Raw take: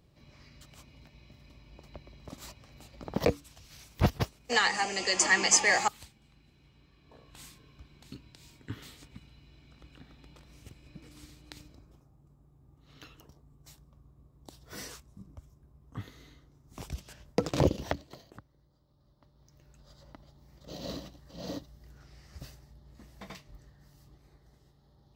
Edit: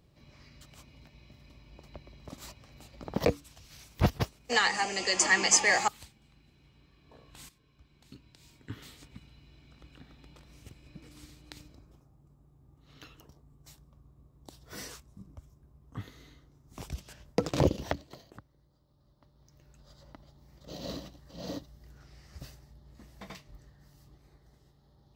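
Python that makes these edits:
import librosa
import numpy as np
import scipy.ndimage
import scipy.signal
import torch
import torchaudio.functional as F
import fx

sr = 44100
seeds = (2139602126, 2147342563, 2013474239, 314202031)

y = fx.edit(x, sr, fx.fade_in_from(start_s=7.49, length_s=1.59, floor_db=-12.0), tone=tone)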